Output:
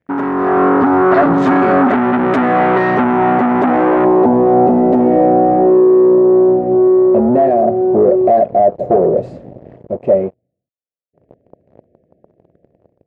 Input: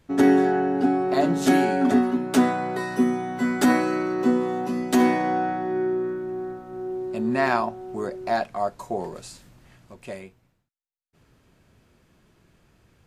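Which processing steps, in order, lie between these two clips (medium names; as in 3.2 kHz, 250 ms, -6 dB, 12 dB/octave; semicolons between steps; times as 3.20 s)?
compression 16:1, threshold -25 dBFS, peak gain reduction 13 dB; Chebyshev band-stop 700–1800 Hz, order 3; treble shelf 10 kHz +9 dB; waveshaping leveller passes 5; low-pass sweep 1.3 kHz -> 570 Hz, 2.44–5.22 s; level rider gain up to 14 dB; high-pass 85 Hz 12 dB/octave; bass shelf 410 Hz -4 dB; 1.88–4.05 s: transformer saturation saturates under 690 Hz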